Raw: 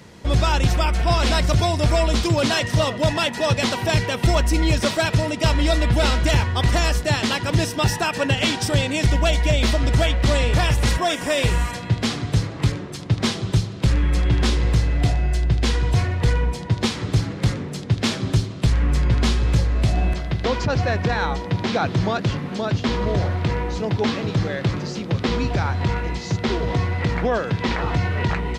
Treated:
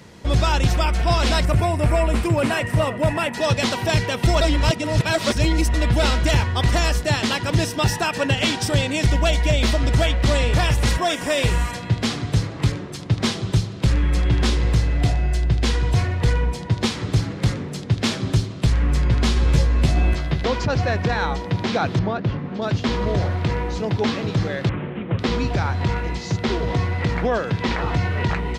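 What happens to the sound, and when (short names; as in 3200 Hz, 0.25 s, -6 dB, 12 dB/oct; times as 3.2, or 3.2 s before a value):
1.45–3.34 band shelf 4700 Hz -11.5 dB 1.3 oct
4.41–5.74 reverse
19.35–20.44 doubler 13 ms -2 dB
21.99–22.62 tape spacing loss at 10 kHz 26 dB
24.69–25.19 CVSD 16 kbps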